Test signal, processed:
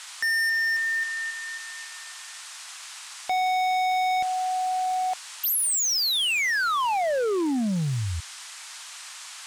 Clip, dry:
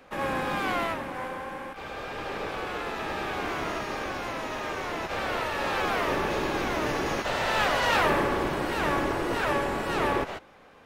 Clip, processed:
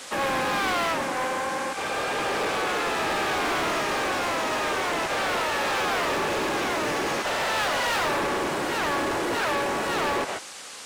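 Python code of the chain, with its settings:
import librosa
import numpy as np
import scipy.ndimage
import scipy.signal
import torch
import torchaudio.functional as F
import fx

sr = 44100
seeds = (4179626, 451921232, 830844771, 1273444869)

y = fx.highpass(x, sr, hz=270.0, slope=6)
y = fx.rider(y, sr, range_db=4, speed_s=2.0)
y = fx.dmg_noise_band(y, sr, seeds[0], low_hz=890.0, high_hz=9100.0, level_db=-48.0)
y = np.clip(y, -10.0 ** (-29.5 / 20.0), 10.0 ** (-29.5 / 20.0))
y = y * 10.0 ** (6.5 / 20.0)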